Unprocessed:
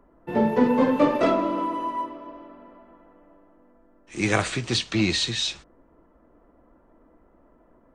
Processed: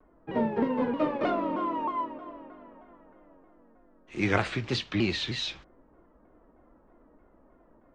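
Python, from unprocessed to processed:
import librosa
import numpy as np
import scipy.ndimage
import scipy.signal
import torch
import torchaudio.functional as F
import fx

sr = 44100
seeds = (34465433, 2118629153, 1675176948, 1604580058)

y = scipy.signal.sosfilt(scipy.signal.butter(2, 3500.0, 'lowpass', fs=sr, output='sos'), x)
y = fx.rider(y, sr, range_db=3, speed_s=0.5)
y = fx.vibrato_shape(y, sr, shape='saw_down', rate_hz=3.2, depth_cents=160.0)
y = F.gain(torch.from_numpy(y), -5.0).numpy()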